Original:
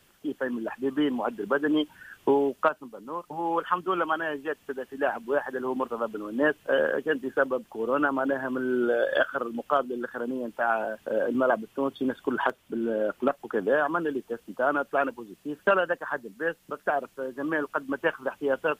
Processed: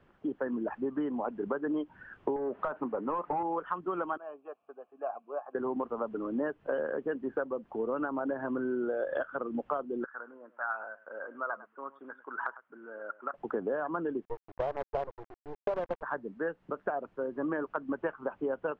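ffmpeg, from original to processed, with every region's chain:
-filter_complex "[0:a]asettb=1/sr,asplit=3[s0][s1][s2];[s0]atrim=end=2.364[s3];[s1]atrim=start=2.36:end=3.43,asetpts=PTS-STARTPTS,afade=t=in:d=0.004:c=qsin,afade=t=out:st=1.066:d=0.004:c=qsin,lowpass=2600,acompressor=threshold=0.0282:ratio=10:attack=3.2:release=140:knee=1:detection=peak,asplit=2[s4][s5];[s5]highpass=f=720:p=1,volume=15.8,asoftclip=type=tanh:threshold=0.15[s6];[s4][s6]amix=inputs=2:normalize=0,lowpass=f=1600:p=1,volume=0.501[s7];[s2]atrim=start=3.426[s8];[s3][s7]acrossfade=d=0.004:c1=hsin:c2=qsin[s9];[s9][s8]acrossfade=d=0.004:c1=qsin:c2=hsin,asettb=1/sr,asplit=3[s10][s11][s12];[s10]atrim=end=4.174[s13];[s11]atrim=start=4.17:end=5.55,asetpts=PTS-STARTPTS,afade=t=in:d=0.004:c=qsin,afade=t=out:st=1.376:d=0.004:c=qsin,asplit=3[s14][s15][s16];[s14]bandpass=f=730:t=q:w=8,volume=1[s17];[s15]bandpass=f=1090:t=q:w=8,volume=0.501[s18];[s16]bandpass=f=2440:t=q:w=8,volume=0.355[s19];[s17][s18][s19]amix=inputs=3:normalize=0,bandreject=f=750:w=11[s20];[s12]atrim=start=5.546[s21];[s13][s20]acrossfade=d=0.004:c1=hsin:c2=qsin[s22];[s22][s21]acrossfade=d=0.004:c1=qsin:c2=hsin,asettb=1/sr,asplit=3[s23][s24][s25];[s23]atrim=end=10.044[s26];[s24]atrim=start=10.04:end=13.34,asetpts=PTS-STARTPTS,afade=t=in:d=0.004:c=qsin,afade=t=out:st=3.296:d=0.004:c=qsin,bandpass=f=1400:t=q:w=3.5,aecho=1:1:103:0.126,atrim=end_sample=145530[s27];[s25]atrim=start=13.336[s28];[s26][s27]acrossfade=d=0.004:c1=hsin:c2=qsin[s29];[s29][s28]acrossfade=d=0.004:c1=qsin:c2=hsin,asettb=1/sr,asplit=3[s30][s31][s32];[s30]atrim=end=14.254[s33];[s31]atrim=start=14.25:end=16.03,asetpts=PTS-STARTPTS,afade=t=in:d=0.004:c=qsin,afade=t=out:st=1.776:d=0.004:c=qsin,asuperpass=centerf=610:order=8:qfactor=0.92,acrusher=bits=5:dc=4:mix=0:aa=0.000001[s34];[s32]atrim=start=16.026[s35];[s33][s34]acrossfade=d=0.004:c1=hsin:c2=qsin[s36];[s36][s35]acrossfade=d=0.004:c1=qsin:c2=hsin,lowpass=1300,acompressor=threshold=0.0282:ratio=6,volume=1.19"

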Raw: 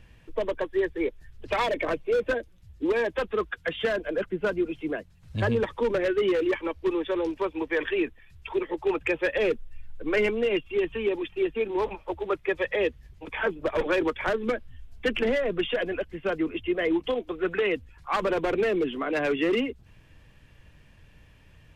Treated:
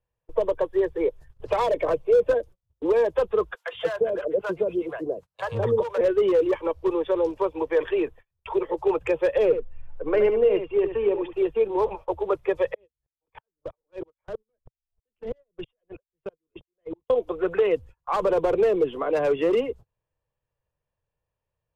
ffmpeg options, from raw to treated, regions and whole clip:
-filter_complex "[0:a]asettb=1/sr,asplit=3[s0][s1][s2];[s0]atrim=end=3.554[s3];[s1]atrim=start=3.55:end=6.01,asetpts=PTS-STARTPTS,afade=t=in:d=0.004:c=qsin,afade=t=out:st=2.456:d=0.004:c=qsin,highpass=f=130:p=1,acrossover=split=690[s4][s5];[s4]adelay=170[s6];[s6][s5]amix=inputs=2:normalize=0,atrim=end_sample=108486[s7];[s2]atrim=start=6.006[s8];[s3][s7]acrossfade=d=0.004:c1=hsin:c2=qsin[s9];[s9][s8]acrossfade=d=0.004:c1=qsin:c2=hsin,asettb=1/sr,asplit=3[s10][s11][s12];[s10]atrim=end=9.454[s13];[s11]atrim=start=9.45:end=11.33,asetpts=PTS-STARTPTS,afade=t=in:d=0.004:c=qsin,afade=t=out:st=1.876:d=0.004:c=qsin,lowpass=2800,aecho=1:1:74:0.335,atrim=end_sample=82908[s14];[s12]atrim=start=11.326[s15];[s13][s14]acrossfade=d=0.004:c1=hsin:c2=qsin[s16];[s16][s15]acrossfade=d=0.004:c1=qsin:c2=hsin,asettb=1/sr,asplit=3[s17][s18][s19];[s17]atrim=end=12.744[s20];[s18]atrim=start=12.74:end=17.1,asetpts=PTS-STARTPTS,afade=t=in:d=0.004:c=qsin,afade=t=out:st=4.356:d=0.004:c=qsin,highshelf=f=4700:g=-11.5,acrossover=split=280|3000[s21][s22][s23];[s22]acompressor=threshold=0.00316:ratio=2:attack=3.2:release=140:knee=2.83:detection=peak[s24];[s21][s24][s23]amix=inputs=3:normalize=0,aeval=exprs='val(0)*pow(10,-39*if(lt(mod(-3.1*n/s,1),2*abs(-3.1)/1000),1-mod(-3.1*n/s,1)/(2*abs(-3.1)/1000),(mod(-3.1*n/s,1)-2*abs(-3.1)/1000)/(1-2*abs(-3.1)/1000))/20)':c=same[s25];[s19]atrim=start=17.096[s26];[s20][s25]acrossfade=d=0.004:c1=hsin:c2=qsin[s27];[s27][s26]acrossfade=d=0.004:c1=qsin:c2=hsin,agate=range=0.0251:threshold=0.00708:ratio=16:detection=peak,equalizer=f=125:t=o:w=1:g=4,equalizer=f=250:t=o:w=1:g=-9,equalizer=f=500:t=o:w=1:g=12,equalizer=f=1000:t=o:w=1:g=9,equalizer=f=2000:t=o:w=1:g=-4,equalizer=f=4000:t=o:w=1:g=-3,acrossover=split=390|3000[s28][s29][s30];[s29]acompressor=threshold=0.0141:ratio=1.5[s31];[s28][s31][s30]amix=inputs=3:normalize=0"

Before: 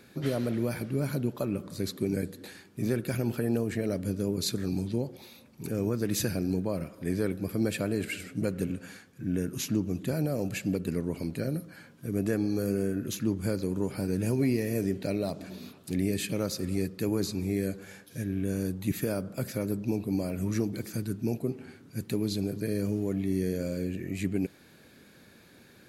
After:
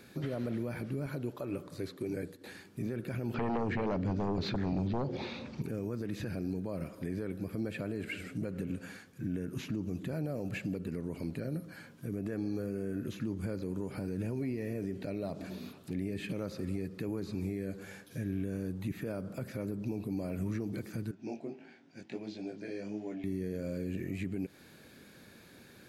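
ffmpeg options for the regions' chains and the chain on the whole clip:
-filter_complex "[0:a]asettb=1/sr,asplit=3[s0][s1][s2];[s0]atrim=end=1.064[s3];[s1]atrim=start=1.06:end=2.47,asetpts=PTS-STARTPTS,afade=t=in:d=0.004:c=qsin,afade=t=out:st=1.406:d=0.004:c=qsin,highpass=f=140:p=1,agate=range=0.0224:threshold=0.00708:ratio=3:release=100:detection=peak,equalizer=f=210:w=7.1:g=-15[s4];[s2]atrim=start=2.466[s5];[s3][s4]acrossfade=d=0.004:c1=hsin:c2=qsin[s6];[s6][s5]acrossfade=d=0.004:c1=qsin:c2=hsin,asettb=1/sr,asplit=3[s7][s8][s9];[s7]atrim=end=3.344[s10];[s8]atrim=start=3.34:end=5.62,asetpts=PTS-STARTPTS,afade=t=in:d=0.004:c=qsin,afade=t=out:st=2.276:d=0.004:c=qsin,lowpass=f=5800:w=0.5412,lowpass=f=5800:w=1.3066,aeval=exprs='0.158*sin(PI/2*2.82*val(0)/0.158)':c=same[s11];[s9]atrim=start=5.616[s12];[s10][s11]acrossfade=d=0.004:c1=hsin:c2=qsin[s13];[s13][s12]acrossfade=d=0.004:c1=qsin:c2=hsin,asettb=1/sr,asplit=3[s14][s15][s16];[s14]atrim=end=21.114[s17];[s15]atrim=start=21.11:end=23.24,asetpts=PTS-STARTPTS,afade=t=in:d=0.004:c=qsin,afade=t=out:st=2.126:d=0.004:c=qsin,flanger=delay=17:depth=4.8:speed=1.5,highpass=330,equalizer=f=450:t=q:w=4:g=-9,equalizer=f=740:t=q:w=4:g=5,equalizer=f=1200:t=q:w=4:g=-10,equalizer=f=4200:t=q:w=4:g=-7,lowpass=f=5500:w=0.5412,lowpass=f=5500:w=1.3066[s18];[s16]atrim=start=23.236[s19];[s17][s18]acrossfade=d=0.004:c1=hsin:c2=qsin[s20];[s20][s19]acrossfade=d=0.004:c1=qsin:c2=hsin,acrossover=split=3000[s21][s22];[s22]acompressor=threshold=0.00178:ratio=4:attack=1:release=60[s23];[s21][s23]amix=inputs=2:normalize=0,alimiter=level_in=1.41:limit=0.0631:level=0:latency=1:release=140,volume=0.708"

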